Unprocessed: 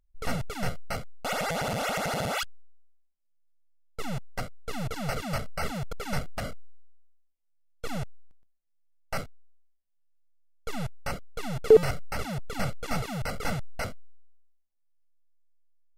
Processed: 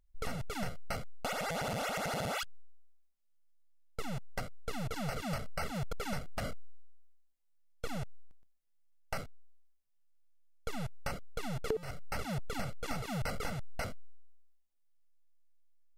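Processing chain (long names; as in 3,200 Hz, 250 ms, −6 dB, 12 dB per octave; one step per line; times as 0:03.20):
downward compressor 12 to 1, threshold −32 dBFS, peak gain reduction 20.5 dB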